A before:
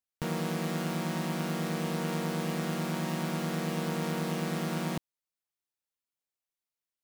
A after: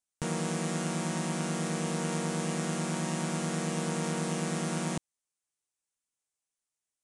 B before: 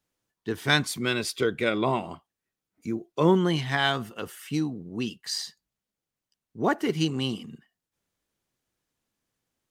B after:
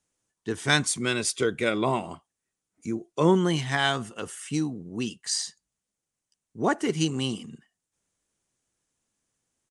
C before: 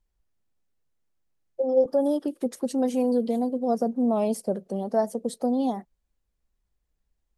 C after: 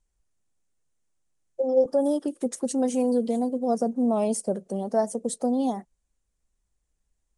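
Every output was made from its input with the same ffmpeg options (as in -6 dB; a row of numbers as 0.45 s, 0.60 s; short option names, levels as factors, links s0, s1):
-af "aexciter=amount=4:drive=1.2:freq=6100,aresample=22050,aresample=44100"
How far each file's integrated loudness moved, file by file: +0.5 LU, 0.0 LU, 0.0 LU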